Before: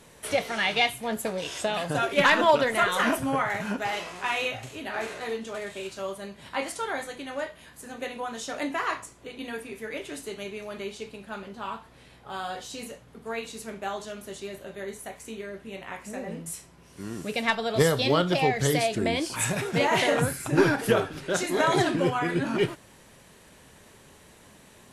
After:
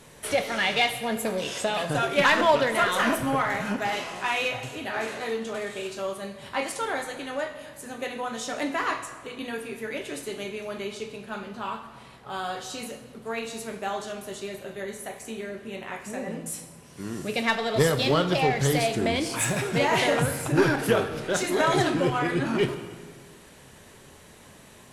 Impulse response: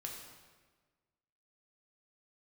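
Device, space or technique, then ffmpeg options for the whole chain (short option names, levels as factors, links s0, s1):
saturated reverb return: -filter_complex "[0:a]asplit=2[s0][s1];[1:a]atrim=start_sample=2205[s2];[s1][s2]afir=irnorm=-1:irlink=0,asoftclip=type=tanh:threshold=0.0422,volume=1.12[s3];[s0][s3]amix=inputs=2:normalize=0,volume=0.794"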